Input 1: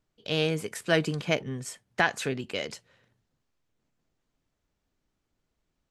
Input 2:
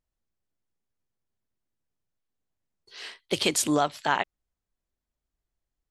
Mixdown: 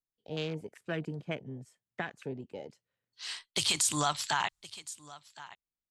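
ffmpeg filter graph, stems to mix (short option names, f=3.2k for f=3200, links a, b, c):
-filter_complex "[0:a]afwtdn=0.0224,acrossover=split=310|3000[a][b][c];[b]acompressor=threshold=-27dB:ratio=6[d];[a][d][c]amix=inputs=3:normalize=0,volume=-7.5dB,asplit=2[e][f];[1:a]agate=range=-33dB:threshold=-43dB:ratio=3:detection=peak,equalizer=f=125:t=o:w=1:g=5,equalizer=f=250:t=o:w=1:g=-8,equalizer=f=500:t=o:w=1:g=-11,equalizer=f=1k:t=o:w=1:g=5,equalizer=f=4k:t=o:w=1:g=5,equalizer=f=8k:t=o:w=1:g=12,acompressor=threshold=-22dB:ratio=2,adelay=250,volume=0.5dB,asplit=2[g][h];[h]volume=-22.5dB[i];[f]apad=whole_len=271310[j];[g][j]sidechaincompress=threshold=-55dB:ratio=3:attack=10:release=867[k];[i]aecho=0:1:1065:1[l];[e][k][l]amix=inputs=3:normalize=0,alimiter=limit=-17.5dB:level=0:latency=1:release=19"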